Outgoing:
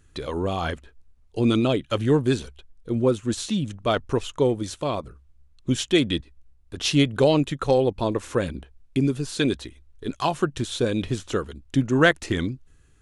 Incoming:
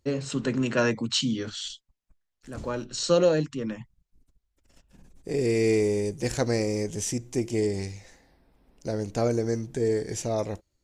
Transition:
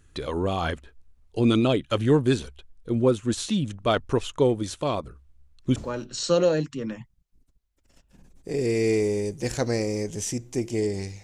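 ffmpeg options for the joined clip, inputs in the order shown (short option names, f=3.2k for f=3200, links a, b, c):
-filter_complex "[1:a]asplit=2[a][b];[0:a]apad=whole_dur=11.23,atrim=end=11.23,atrim=end=5.762[c];[b]atrim=start=2.558:end=8.03[d];[a]atrim=start=1.67:end=2.56,asetpts=PTS-STARTPTS,volume=-17.5dB,afade=t=in:d=0.004:c=hsin,afade=t=out:st=0.886:d=0.004:c=hsin,adelay=4870[e];[c][d]acrossfade=d=0.004:c1=hsin:c2=hsin[f];[f][e]amix=inputs=2:normalize=0"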